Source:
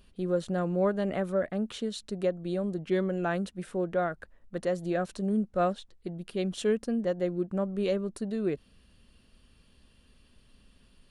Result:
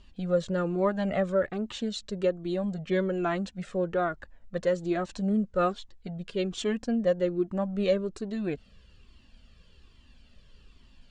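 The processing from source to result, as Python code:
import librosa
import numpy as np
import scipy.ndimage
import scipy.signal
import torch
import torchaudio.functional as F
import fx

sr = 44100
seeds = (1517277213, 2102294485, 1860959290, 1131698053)

y = scipy.signal.sosfilt(scipy.signal.cheby1(4, 1.0, 7500.0, 'lowpass', fs=sr, output='sos'), x)
y = fx.comb_cascade(y, sr, direction='falling', hz=1.2)
y = y * librosa.db_to_amplitude(7.5)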